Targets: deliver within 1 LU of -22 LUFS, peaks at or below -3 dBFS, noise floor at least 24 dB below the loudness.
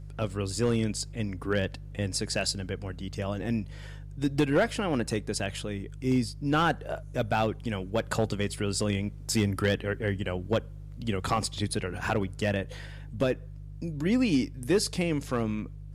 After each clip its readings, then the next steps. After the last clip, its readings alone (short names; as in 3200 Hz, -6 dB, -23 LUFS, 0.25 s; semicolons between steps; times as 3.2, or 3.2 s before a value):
clipped 0.3%; flat tops at -17.0 dBFS; hum 50 Hz; harmonics up to 150 Hz; hum level -39 dBFS; loudness -30.0 LUFS; peak -17.0 dBFS; loudness target -22.0 LUFS
-> clip repair -17 dBFS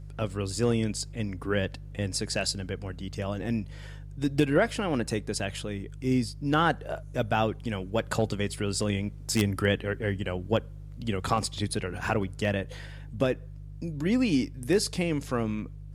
clipped 0.0%; hum 50 Hz; harmonics up to 150 Hz; hum level -39 dBFS
-> de-hum 50 Hz, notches 3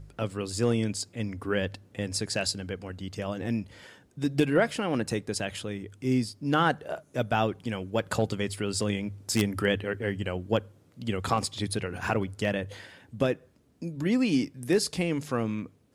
hum none; loudness -29.5 LUFS; peak -8.0 dBFS; loudness target -22.0 LUFS
-> gain +7.5 dB; limiter -3 dBFS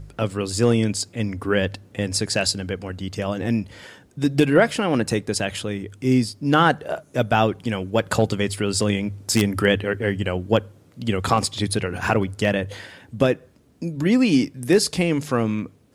loudness -22.0 LUFS; peak -3.0 dBFS; noise floor -54 dBFS